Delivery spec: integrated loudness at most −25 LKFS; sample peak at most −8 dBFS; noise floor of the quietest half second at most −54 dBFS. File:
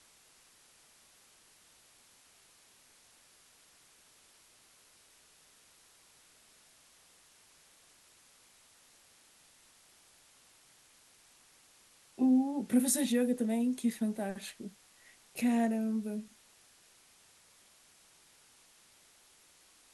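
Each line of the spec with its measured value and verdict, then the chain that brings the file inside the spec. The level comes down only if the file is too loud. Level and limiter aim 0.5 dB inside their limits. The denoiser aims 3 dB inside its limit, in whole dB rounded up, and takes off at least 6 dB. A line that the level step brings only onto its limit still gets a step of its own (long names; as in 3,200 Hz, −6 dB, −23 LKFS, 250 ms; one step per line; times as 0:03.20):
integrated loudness −31.5 LKFS: in spec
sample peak −16.5 dBFS: in spec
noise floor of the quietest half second −63 dBFS: in spec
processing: no processing needed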